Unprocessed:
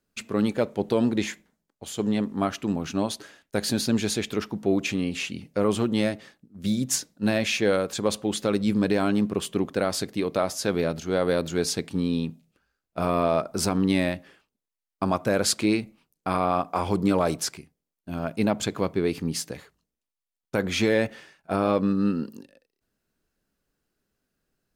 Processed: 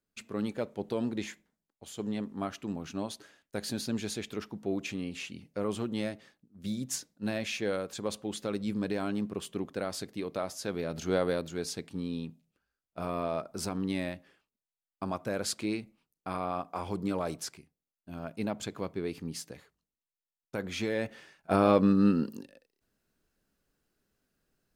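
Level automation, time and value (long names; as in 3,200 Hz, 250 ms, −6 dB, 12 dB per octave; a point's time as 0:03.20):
0:10.88 −9.5 dB
0:11.03 −1 dB
0:11.49 −10 dB
0:20.94 −10 dB
0:21.52 0 dB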